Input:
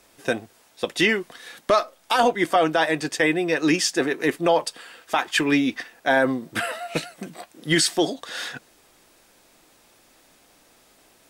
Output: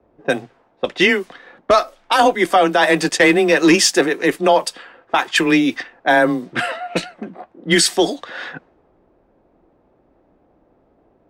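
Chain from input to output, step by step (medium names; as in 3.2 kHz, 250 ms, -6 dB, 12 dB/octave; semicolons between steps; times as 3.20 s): frequency shift +18 Hz; 2.83–4.01 s: waveshaping leveller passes 1; level-controlled noise filter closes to 590 Hz, open at -19.5 dBFS; trim +5.5 dB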